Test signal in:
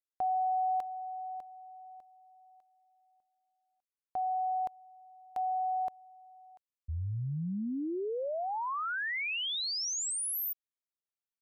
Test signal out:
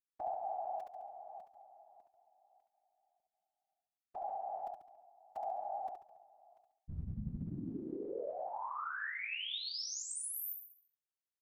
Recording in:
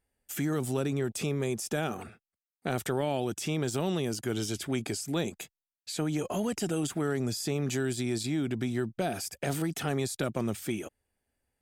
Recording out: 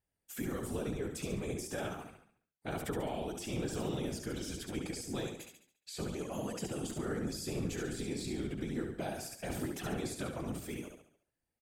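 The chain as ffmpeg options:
-af "aecho=1:1:70|140|210|280|350|420:0.562|0.253|0.114|0.0512|0.0231|0.0104,afftfilt=real='hypot(re,im)*cos(2*PI*random(0))':imag='hypot(re,im)*sin(2*PI*random(1))':win_size=512:overlap=0.75,volume=-2.5dB"

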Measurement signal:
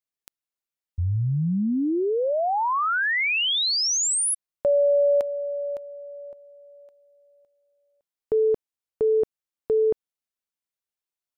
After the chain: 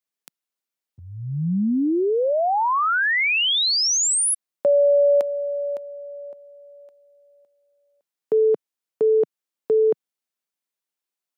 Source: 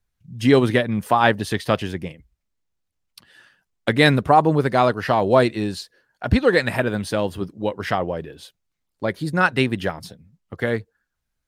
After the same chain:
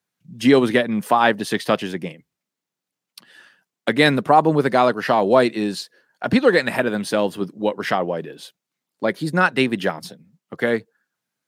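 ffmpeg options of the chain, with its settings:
-filter_complex "[0:a]highpass=f=160:w=0.5412,highpass=f=160:w=1.3066,asplit=2[a][b];[b]alimiter=limit=-9dB:level=0:latency=1:release=357,volume=1dB[c];[a][c]amix=inputs=2:normalize=0,volume=-3.5dB"

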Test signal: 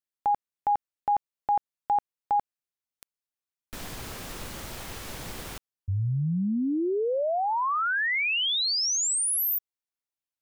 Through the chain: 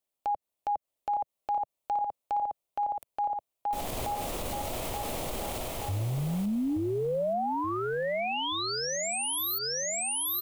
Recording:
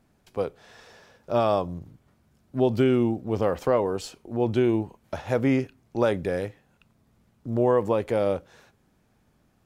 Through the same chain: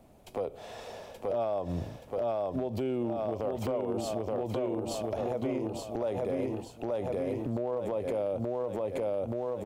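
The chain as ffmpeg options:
-filter_complex "[0:a]equalizer=f=5.2k:t=o:w=0.91:g=-5.5,aecho=1:1:877|1754|2631|3508|4385:0.631|0.271|0.117|0.0502|0.0216,acrossover=split=140|4100[a][b][c];[a]asoftclip=type=tanh:threshold=-32dB[d];[d][b][c]amix=inputs=3:normalize=0,equalizer=f=160:t=o:w=0.67:g=-4,equalizer=f=630:t=o:w=0.67:g=8,equalizer=f=1.6k:t=o:w=0.67:g=-10,acompressor=threshold=-33dB:ratio=10:attack=0.16:release=96:knee=1:detection=rms,volume=7dB"

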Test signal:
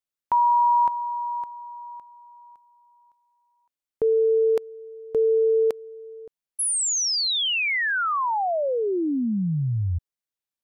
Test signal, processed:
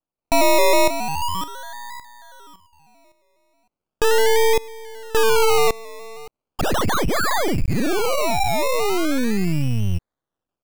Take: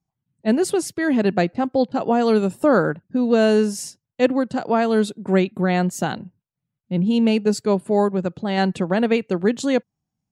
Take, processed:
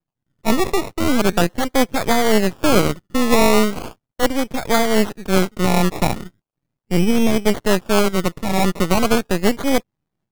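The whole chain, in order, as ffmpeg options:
-af "acrusher=samples=22:mix=1:aa=0.000001:lfo=1:lforange=13.2:lforate=0.38,dynaudnorm=f=160:g=3:m=8dB,aeval=exprs='max(val(0),0)':c=same"

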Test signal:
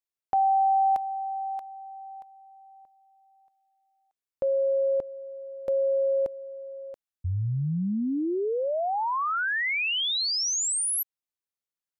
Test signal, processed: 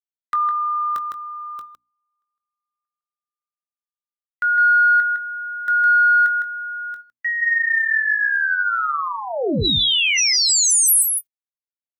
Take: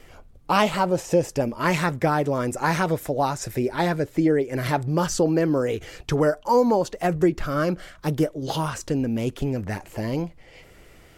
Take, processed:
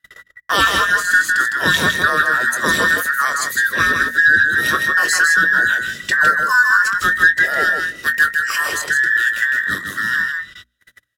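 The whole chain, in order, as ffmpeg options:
-filter_complex "[0:a]afftfilt=real='real(if(between(b,1,1012),(2*floor((b-1)/92)+1)*92-b,b),0)':imag='imag(if(between(b,1,1012),(2*floor((b-1)/92)+1)*92-b,b),0)*if(between(b,1,1012),-1,1)':win_size=2048:overlap=0.75,equalizer=f=840:t=o:w=0.73:g=-14,asplit=2[a][b];[b]adelay=21,volume=-10.5dB[c];[a][c]amix=inputs=2:normalize=0,aecho=1:1:158:0.562,agate=range=-35dB:threshold=-44dB:ratio=16:release=110:detection=rms,highpass=54,acontrast=53,highshelf=f=12k:g=8.5,bandreject=f=60:t=h:w=6,bandreject=f=120:t=h:w=6,bandreject=f=180:t=h:w=6,bandreject=f=240:t=h:w=6,bandreject=f=300:t=h:w=6,volume=2dB"

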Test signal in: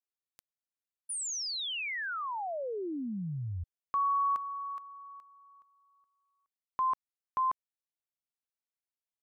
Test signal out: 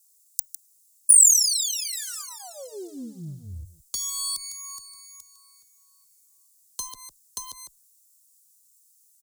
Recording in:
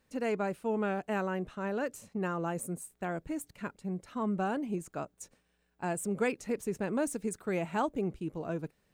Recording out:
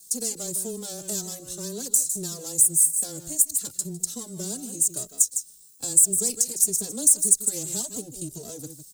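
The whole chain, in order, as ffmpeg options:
-filter_complex "[0:a]aeval=exprs='if(lt(val(0),0),0.447*val(0),val(0))':c=same,highpass=f=58:p=1,aecho=1:1:154:0.211,acrossover=split=190|760|4000[a][b][c][d];[c]asoftclip=type=hard:threshold=-35dB[e];[a][b][e][d]amix=inputs=4:normalize=0,aexciter=amount=14.3:drive=3:freq=3.6k,acontrast=58,highshelf=f=9.2k:g=-9.5,acompressor=threshold=-38dB:ratio=2:attack=26:release=136:detection=peak,firequalizer=gain_entry='entry(430,0);entry(930,-12);entry(7600,15)':delay=0.05:min_phase=1,afreqshift=-14,asplit=2[f][g];[g]adelay=2.8,afreqshift=1.8[h];[f][h]amix=inputs=2:normalize=1,volume=1.5dB"

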